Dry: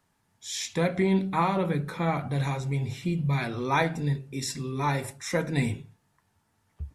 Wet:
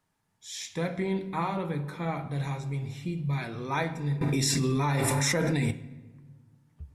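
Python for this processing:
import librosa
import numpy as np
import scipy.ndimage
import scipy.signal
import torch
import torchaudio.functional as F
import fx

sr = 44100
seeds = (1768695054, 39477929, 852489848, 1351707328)

y = fx.room_shoebox(x, sr, seeds[0], volume_m3=1300.0, walls='mixed', distance_m=0.51)
y = fx.env_flatten(y, sr, amount_pct=100, at=(4.21, 5.71))
y = y * librosa.db_to_amplitude(-5.5)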